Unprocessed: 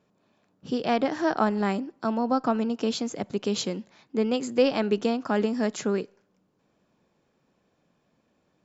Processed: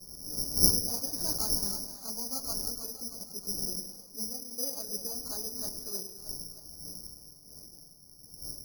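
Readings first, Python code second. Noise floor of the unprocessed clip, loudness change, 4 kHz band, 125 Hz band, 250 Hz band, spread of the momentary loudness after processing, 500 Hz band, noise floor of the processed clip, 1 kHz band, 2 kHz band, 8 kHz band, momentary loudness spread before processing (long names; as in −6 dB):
−71 dBFS, −4.5 dB, +2.5 dB, −6.5 dB, −16.5 dB, 18 LU, −19.0 dB, −54 dBFS, −19.5 dB, below −25 dB, can't be measured, 7 LU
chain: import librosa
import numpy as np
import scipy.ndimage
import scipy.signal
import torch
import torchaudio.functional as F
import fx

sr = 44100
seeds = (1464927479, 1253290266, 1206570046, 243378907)

y = fx.dmg_wind(x, sr, seeds[0], corner_hz=300.0, level_db=-27.0)
y = fx.chorus_voices(y, sr, voices=6, hz=1.1, base_ms=14, depth_ms=3.5, mix_pct=55)
y = scipy.signal.sosfilt(scipy.signal.butter(4, 1400.0, 'lowpass', fs=sr, output='sos'), y)
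y = fx.echo_split(y, sr, split_hz=570.0, low_ms=103, high_ms=313, feedback_pct=52, wet_db=-8.0)
y = fx.env_lowpass(y, sr, base_hz=1100.0, full_db=-17.5)
y = (np.kron(y[::8], np.eye(8)[0]) * 8)[:len(y)]
y = y * 10.0 ** (-18.0 / 20.0)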